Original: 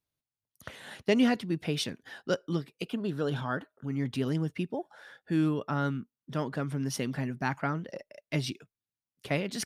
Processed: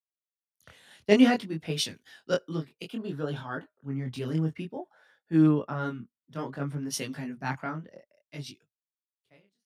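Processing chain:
fade-out on the ending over 2.35 s
chorus effect 0.57 Hz, delay 18.5 ms, depth 6.9 ms
multiband upward and downward expander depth 70%
level +1.5 dB

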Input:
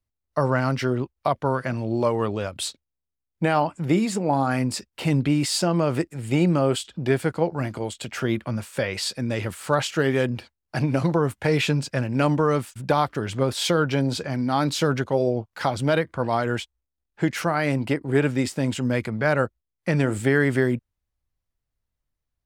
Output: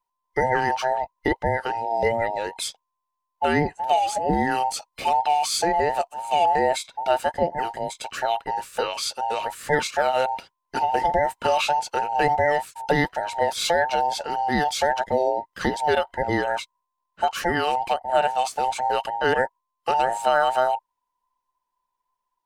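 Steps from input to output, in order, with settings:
frequency inversion band by band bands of 1,000 Hz

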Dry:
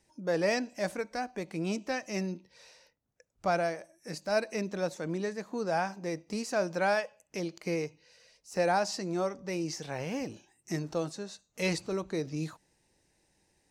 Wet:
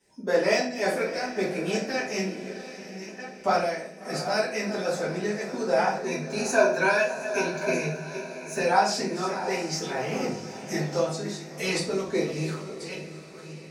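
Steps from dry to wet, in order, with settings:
delay that plays each chunk backwards 647 ms, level −11.5 dB
high-pass filter 110 Hz 12 dB per octave
harmonic and percussive parts rebalanced harmonic −11 dB
0:05.99–0:08.63: EQ curve with evenly spaced ripples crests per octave 1.5, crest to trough 12 dB
feedback delay with all-pass diffusion 698 ms, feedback 50%, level −13 dB
rectangular room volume 51 cubic metres, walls mixed, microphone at 2 metres

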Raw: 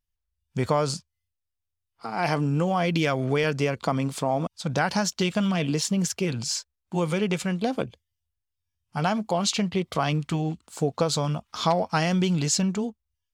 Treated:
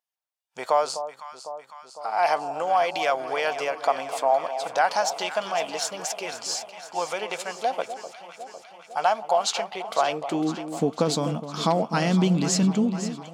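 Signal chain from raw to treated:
high-pass filter sweep 710 Hz → 220 Hz, 0:09.93–0:10.60
delay that swaps between a low-pass and a high-pass 252 ms, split 1,000 Hz, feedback 79%, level −10 dB
level −1 dB

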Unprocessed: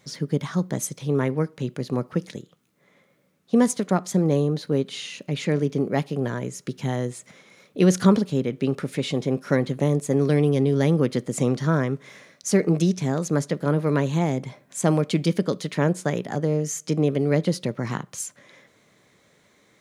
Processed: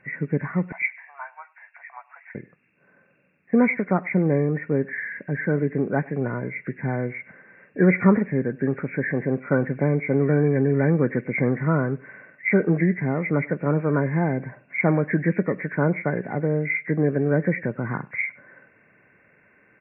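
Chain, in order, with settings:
hearing-aid frequency compression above 1,400 Hz 4 to 1
0:00.72–0:02.35: Chebyshev high-pass with heavy ripple 670 Hz, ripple 6 dB
single-tap delay 100 ms −23.5 dB

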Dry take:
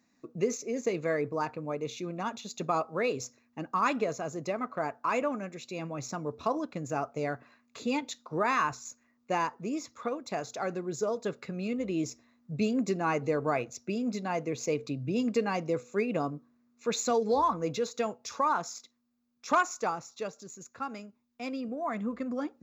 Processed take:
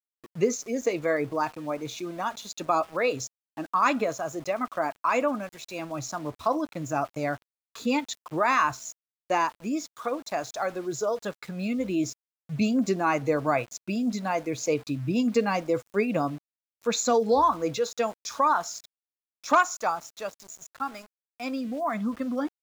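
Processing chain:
steady tone 650 Hz −61 dBFS
noise reduction from a noise print of the clip's start 9 dB
centre clipping without the shift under −49.5 dBFS
level +5 dB

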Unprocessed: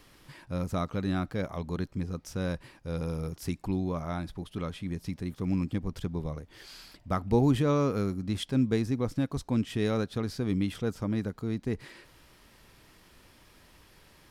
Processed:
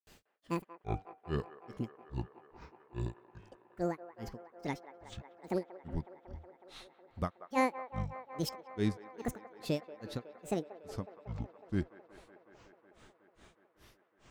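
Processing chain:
hum removal 153.4 Hz, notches 32
granular cloud 234 ms, grains 2.4 per second, spray 162 ms, pitch spread up and down by 12 semitones
on a send: delay with a band-pass on its return 184 ms, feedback 84%, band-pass 940 Hz, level −12.5 dB
on the sum: level −1 dB

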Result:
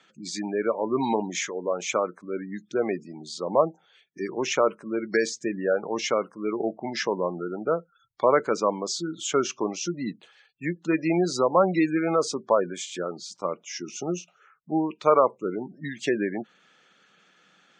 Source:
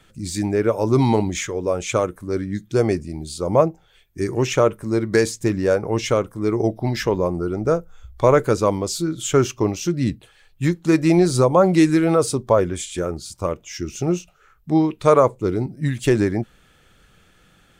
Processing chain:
low-shelf EQ 490 Hz −8.5 dB
gate on every frequency bin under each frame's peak −25 dB strong
elliptic band-pass filter 180–6,400 Hz, stop band 40 dB
level −1 dB

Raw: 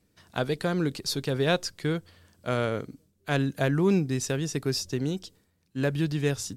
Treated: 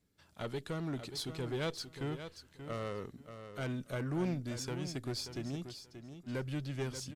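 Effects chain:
one-sided soft clipper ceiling −25 dBFS
wrong playback speed 48 kHz file played as 44.1 kHz
on a send: repeating echo 582 ms, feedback 18%, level −10 dB
on the sum: level −8.5 dB

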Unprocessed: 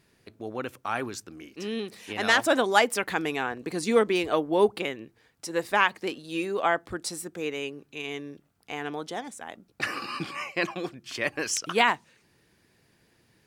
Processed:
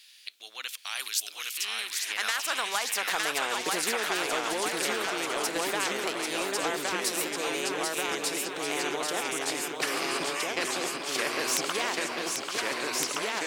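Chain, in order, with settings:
high-pass filter sweep 3,300 Hz → 430 Hz, 0:01.43–0:03.67
downward compressor 6 to 1, threshold −24 dBFS, peak gain reduction 14.5 dB
delay with pitch and tempo change per echo 775 ms, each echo −1 semitone, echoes 3
0:00.99–0:01.65: parametric band 14,000 Hz +10 dB 2 octaves
on a send: feedback echo with a high-pass in the loop 790 ms, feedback 40%, level −8.5 dB
on the sum: every bin compressed towards the loudest bin 2 to 1
level +1.5 dB

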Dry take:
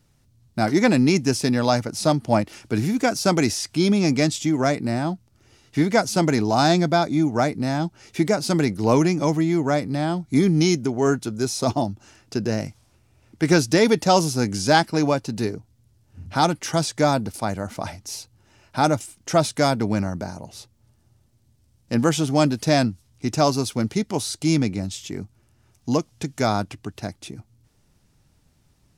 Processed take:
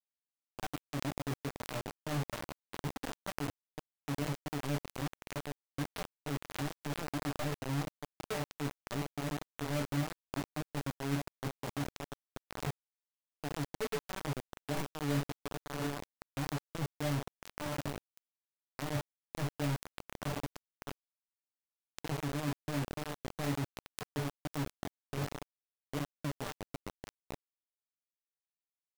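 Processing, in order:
running median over 41 samples
spectral tilt −2 dB per octave
feedback delay with all-pass diffusion 678 ms, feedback 47%, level −15 dB
reversed playback
downward compressor 12 to 1, threshold −26 dBFS, peak gain reduction 17.5 dB
reversed playback
stiff-string resonator 140 Hz, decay 0.27 s, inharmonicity 0.008
bit-depth reduction 6 bits, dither none
background raised ahead of every attack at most 150 dB per second

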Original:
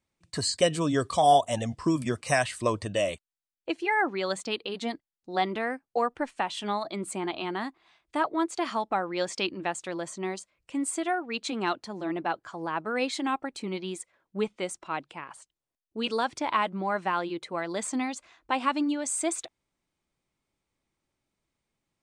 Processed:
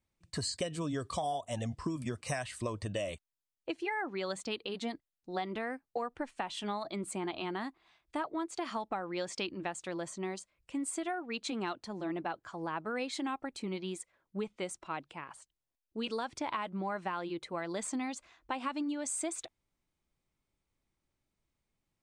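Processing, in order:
low-shelf EQ 100 Hz +9.5 dB
downward compressor 12 to 1, threshold −27 dBFS, peak gain reduction 13 dB
level −4.5 dB

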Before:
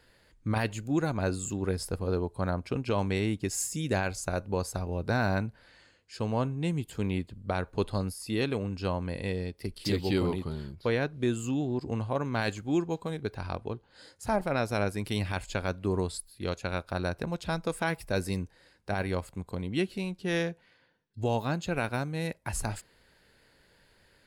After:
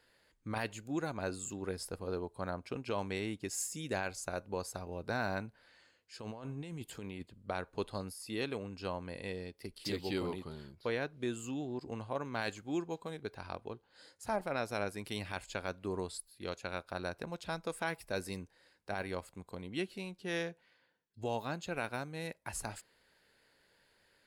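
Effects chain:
low-shelf EQ 190 Hz −10.5 dB
0:06.19–0:07.23: compressor whose output falls as the input rises −38 dBFS, ratio −1
level −5.5 dB

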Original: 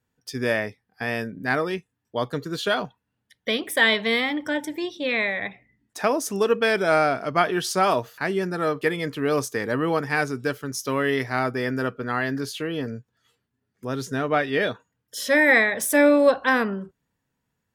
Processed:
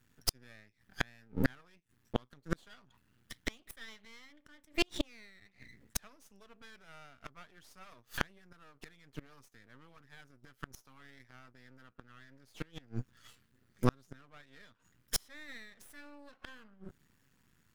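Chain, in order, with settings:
flat-topped bell 550 Hz −9.5 dB
gate with flip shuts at −24 dBFS, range −39 dB
half-wave rectification
level +12 dB

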